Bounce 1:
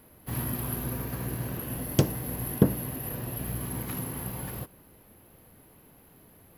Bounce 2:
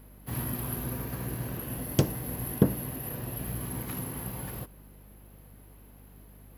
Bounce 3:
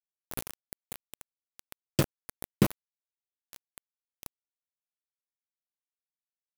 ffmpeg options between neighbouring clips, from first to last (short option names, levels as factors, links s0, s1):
-af "aeval=exprs='val(0)+0.00316*(sin(2*PI*50*n/s)+sin(2*PI*2*50*n/s)/2+sin(2*PI*3*50*n/s)/3+sin(2*PI*4*50*n/s)/4+sin(2*PI*5*50*n/s)/5)':c=same,volume=0.841"
-af "afftfilt=real='re*pow(10,10/40*sin(2*PI*(1.3*log(max(b,1)*sr/1024/100)/log(2)-(-1.5)*(pts-256)/sr)))':imag='im*pow(10,10/40*sin(2*PI*(1.3*log(max(b,1)*sr/1024/100)/log(2)-(-1.5)*(pts-256)/sr)))':win_size=1024:overlap=0.75,acrusher=bits=3:mix=0:aa=0.000001,volume=0.708"